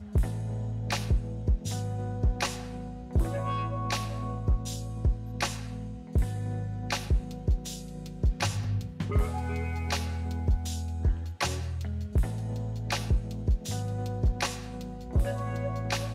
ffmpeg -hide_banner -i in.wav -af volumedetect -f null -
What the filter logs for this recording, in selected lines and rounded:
mean_volume: -29.5 dB
max_volume: -18.1 dB